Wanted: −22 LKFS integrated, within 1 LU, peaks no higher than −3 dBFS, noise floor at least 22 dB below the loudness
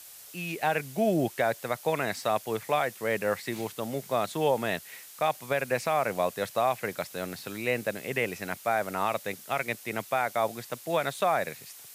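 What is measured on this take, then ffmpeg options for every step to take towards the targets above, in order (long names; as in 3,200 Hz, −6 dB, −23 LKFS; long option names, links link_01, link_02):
background noise floor −48 dBFS; target noise floor −52 dBFS; integrated loudness −30.0 LKFS; sample peak −14.5 dBFS; target loudness −22.0 LKFS
→ -af "afftdn=noise_reduction=6:noise_floor=-48"
-af "volume=8dB"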